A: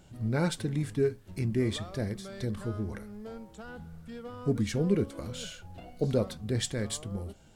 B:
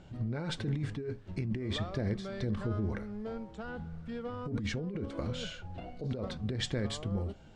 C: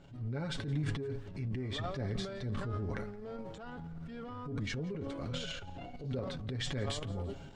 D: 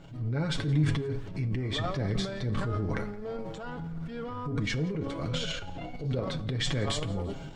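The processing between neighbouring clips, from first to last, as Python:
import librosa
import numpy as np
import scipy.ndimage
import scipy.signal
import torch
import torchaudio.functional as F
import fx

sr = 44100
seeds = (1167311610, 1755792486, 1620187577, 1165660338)

y1 = fx.air_absorb(x, sr, metres=110.0)
y1 = fx.over_compress(y1, sr, threshold_db=-33.0, ratio=-1.0)
y1 = fx.high_shelf(y1, sr, hz=7800.0, db=-6.5)
y2 = y1 + 0.5 * np.pad(y1, (int(7.2 * sr / 1000.0), 0))[:len(y1)]
y2 = fx.transient(y2, sr, attack_db=-6, sustain_db=10)
y2 = fx.echo_feedback(y2, sr, ms=170, feedback_pct=46, wet_db=-22)
y2 = y2 * librosa.db_to_amplitude(-4.0)
y3 = y2 + 0.3 * np.pad(y2, (int(6.3 * sr / 1000.0), 0))[:len(y2)]
y3 = fx.rev_plate(y3, sr, seeds[0], rt60_s=0.67, hf_ratio=0.75, predelay_ms=0, drr_db=13.5)
y3 = y3 * librosa.db_to_amplitude(6.5)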